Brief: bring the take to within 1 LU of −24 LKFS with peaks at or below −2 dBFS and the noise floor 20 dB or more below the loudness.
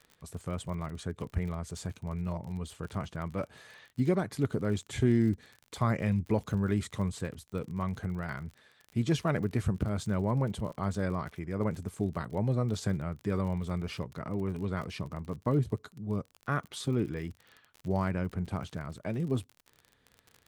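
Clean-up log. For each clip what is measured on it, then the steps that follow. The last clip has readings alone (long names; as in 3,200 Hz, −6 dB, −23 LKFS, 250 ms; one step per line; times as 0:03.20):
crackle rate 43 per second; integrated loudness −33.0 LKFS; sample peak −14.0 dBFS; target loudness −24.0 LKFS
→ click removal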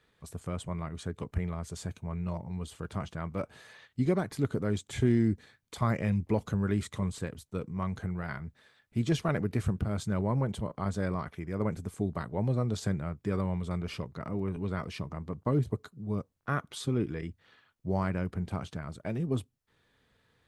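crackle rate 0.098 per second; integrated loudness −33.0 LKFS; sample peak −14.0 dBFS; target loudness −24.0 LKFS
→ level +9 dB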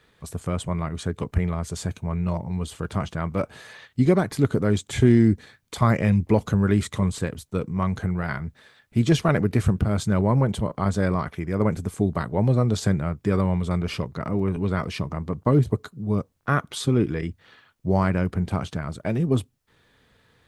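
integrated loudness −24.0 LKFS; sample peak −5.0 dBFS; background noise floor −64 dBFS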